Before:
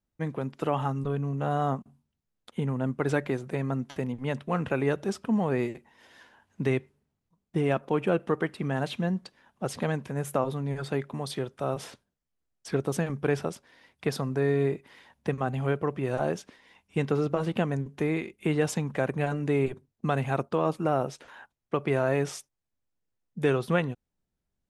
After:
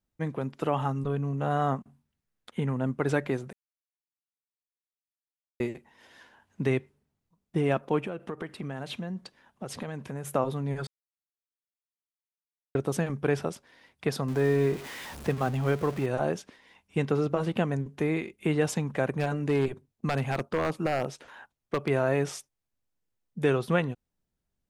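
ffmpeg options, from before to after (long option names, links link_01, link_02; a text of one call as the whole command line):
ffmpeg -i in.wav -filter_complex "[0:a]asettb=1/sr,asplit=3[link_01][link_02][link_03];[link_01]atrim=end=1.504[link_04];[link_02]atrim=start=1.5:end=2.75,asetpts=PTS-STARTPTS,afade=type=in:duration=0.004:curve=qsin,afade=type=out:start_time=1.246:duration=0.004:curve=qsin,equalizer=frequency=1800:width=1.5:gain=5[link_05];[link_03]atrim=start=2.746[link_06];[link_04][link_05]acrossfade=duration=0.004:curve1=hsin:curve2=qsin[link_07];[link_07][link_06]acrossfade=duration=0.004:curve1=qsin:curve2=hsin,asplit=3[link_08][link_09][link_10];[link_08]afade=type=out:start_time=8:duration=0.02[link_11];[link_09]acompressor=threshold=-31dB:ratio=6:attack=3.2:release=140:knee=1:detection=peak,afade=type=in:start_time=8:duration=0.02,afade=type=out:start_time=10.26:duration=0.02[link_12];[link_10]afade=type=in:start_time=10.26:duration=0.02[link_13];[link_11][link_12][link_13]amix=inputs=3:normalize=0,asettb=1/sr,asplit=3[link_14][link_15][link_16];[link_14]atrim=end=14.284[link_17];[link_15]atrim=start=14.28:end=16.06,asetpts=PTS-STARTPTS,afade=type=in:duration=0.004:curve=qsin,afade=type=out:start_time=1.776:duration=0.004:curve=qsin,aeval=exprs='val(0)+0.5*0.015*sgn(val(0))':channel_layout=same[link_18];[link_16]atrim=start=16.056[link_19];[link_17][link_18]acrossfade=duration=0.004:curve1=hsin:curve2=qsin[link_20];[link_20][link_19]acrossfade=duration=0.004:curve1=qsin:curve2=hsin,asettb=1/sr,asplit=3[link_21][link_22][link_23];[link_21]atrim=end=19.104[link_24];[link_22]atrim=start=19.1:end=21.9,asetpts=PTS-STARTPTS,afade=type=in:duration=0.004:curve=qsin,afade=type=out:start_time=2.796:duration=0.004:curve=qsin,aeval=exprs='0.126*(abs(mod(val(0)/0.126+3,4)-2)-1)':channel_layout=same[link_25];[link_23]atrim=start=21.896[link_26];[link_24][link_25]acrossfade=duration=0.004:curve1=hsin:curve2=qsin[link_27];[link_27][link_26]acrossfade=duration=0.004:curve1=qsin:curve2=hsin,asplit=5[link_28][link_29][link_30][link_31][link_32];[link_28]atrim=end=3.53,asetpts=PTS-STARTPTS,afade=type=out:start_time=3.526:duration=0.004:curve=hsin[link_33];[link_29]atrim=start=3.53:end=5.6,asetpts=PTS-STARTPTS,volume=0[link_34];[link_30]atrim=start=5.6:end=10.87,asetpts=PTS-STARTPTS,afade=type=in:duration=0.004:curve=hsin,afade=type=out:start_time=5.266:duration=0.004:curve=hsin[link_35];[link_31]atrim=start=10.87:end=12.75,asetpts=PTS-STARTPTS,volume=0[link_36];[link_32]atrim=start=12.75,asetpts=PTS-STARTPTS,afade=type=in:duration=0.004:curve=hsin[link_37];[link_33][link_34][link_35][link_36][link_37]concat=n=5:v=0:a=1" out.wav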